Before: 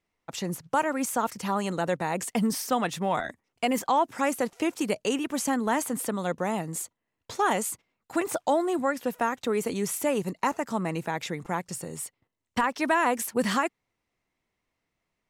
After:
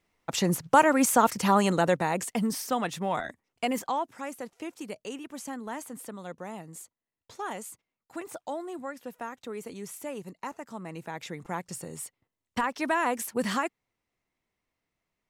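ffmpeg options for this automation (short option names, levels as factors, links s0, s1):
-af "volume=5.01,afade=t=out:st=1.58:d=0.76:silence=0.375837,afade=t=out:st=3.67:d=0.52:silence=0.375837,afade=t=in:st=10.81:d=0.89:silence=0.398107"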